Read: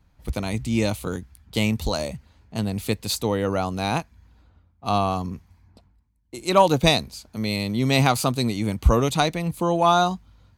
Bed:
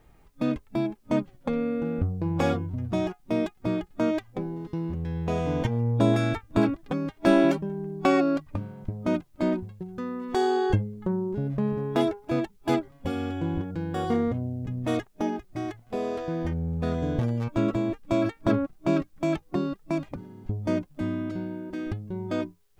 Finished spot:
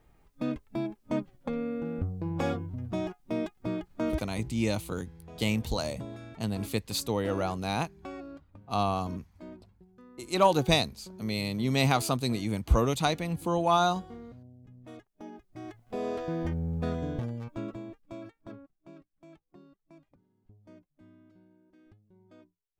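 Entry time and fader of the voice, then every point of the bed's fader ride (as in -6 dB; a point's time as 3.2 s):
3.85 s, -6.0 dB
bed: 4.26 s -5.5 dB
4.52 s -20.5 dB
15.05 s -20.5 dB
16.08 s -2.5 dB
16.78 s -2.5 dB
18.93 s -27.5 dB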